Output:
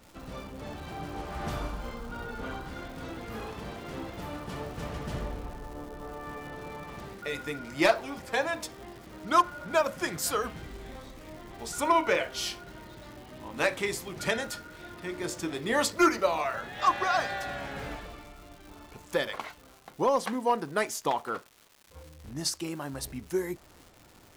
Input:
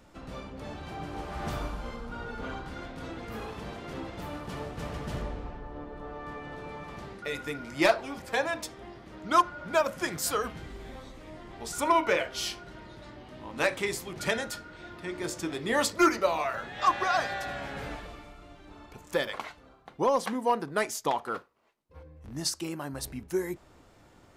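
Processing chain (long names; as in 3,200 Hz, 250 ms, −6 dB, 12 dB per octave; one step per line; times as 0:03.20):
surface crackle 380 per second −43 dBFS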